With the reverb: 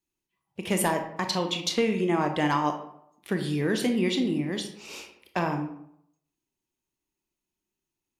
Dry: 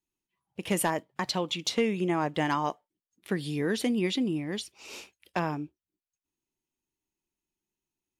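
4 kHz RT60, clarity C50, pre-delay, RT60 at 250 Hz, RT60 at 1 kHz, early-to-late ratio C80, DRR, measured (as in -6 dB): 0.45 s, 8.5 dB, 22 ms, 0.75 s, 0.70 s, 11.0 dB, 5.0 dB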